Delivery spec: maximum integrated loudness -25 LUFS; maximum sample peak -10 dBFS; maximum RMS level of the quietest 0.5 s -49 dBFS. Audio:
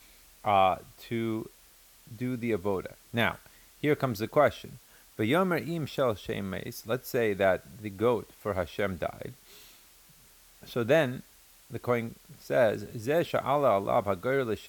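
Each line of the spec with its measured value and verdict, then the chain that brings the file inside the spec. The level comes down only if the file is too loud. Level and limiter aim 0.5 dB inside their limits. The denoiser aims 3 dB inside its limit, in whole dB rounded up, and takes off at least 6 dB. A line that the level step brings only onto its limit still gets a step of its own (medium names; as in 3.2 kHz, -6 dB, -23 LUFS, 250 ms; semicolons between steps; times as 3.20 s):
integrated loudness -29.5 LUFS: pass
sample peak -11.0 dBFS: pass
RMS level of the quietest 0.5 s -58 dBFS: pass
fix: none needed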